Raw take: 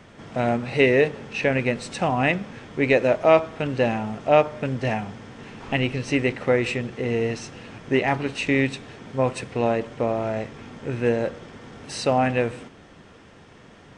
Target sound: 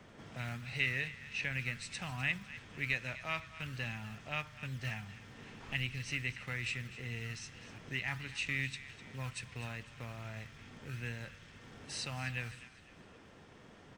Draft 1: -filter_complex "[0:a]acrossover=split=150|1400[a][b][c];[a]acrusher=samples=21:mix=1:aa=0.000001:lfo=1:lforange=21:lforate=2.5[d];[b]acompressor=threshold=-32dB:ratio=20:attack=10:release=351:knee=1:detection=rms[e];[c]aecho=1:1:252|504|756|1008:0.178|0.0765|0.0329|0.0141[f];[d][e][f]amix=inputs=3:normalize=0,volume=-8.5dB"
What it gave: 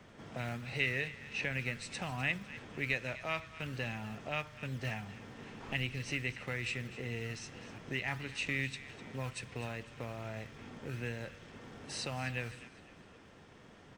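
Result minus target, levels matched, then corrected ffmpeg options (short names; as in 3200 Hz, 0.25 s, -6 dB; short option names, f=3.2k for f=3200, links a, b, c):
compressor: peak gain reduction -10 dB
-filter_complex "[0:a]acrossover=split=150|1400[a][b][c];[a]acrusher=samples=21:mix=1:aa=0.000001:lfo=1:lforange=21:lforate=2.5[d];[b]acompressor=threshold=-42.5dB:ratio=20:attack=10:release=351:knee=1:detection=rms[e];[c]aecho=1:1:252|504|756|1008:0.178|0.0765|0.0329|0.0141[f];[d][e][f]amix=inputs=3:normalize=0,volume=-8.5dB"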